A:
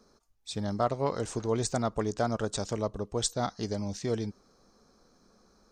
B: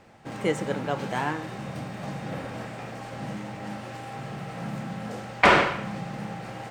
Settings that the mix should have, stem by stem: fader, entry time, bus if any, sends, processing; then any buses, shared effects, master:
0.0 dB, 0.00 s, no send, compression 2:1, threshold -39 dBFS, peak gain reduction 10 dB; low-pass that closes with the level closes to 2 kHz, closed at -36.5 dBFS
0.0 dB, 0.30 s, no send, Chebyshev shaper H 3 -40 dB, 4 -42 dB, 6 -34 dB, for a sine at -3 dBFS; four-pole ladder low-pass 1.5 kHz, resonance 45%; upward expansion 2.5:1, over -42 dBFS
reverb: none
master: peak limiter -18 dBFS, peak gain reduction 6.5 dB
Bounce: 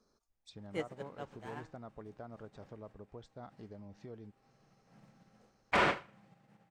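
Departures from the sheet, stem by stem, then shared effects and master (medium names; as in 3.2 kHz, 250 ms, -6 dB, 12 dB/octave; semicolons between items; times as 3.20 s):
stem A 0.0 dB -> -11.5 dB; stem B: missing four-pole ladder low-pass 1.5 kHz, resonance 45%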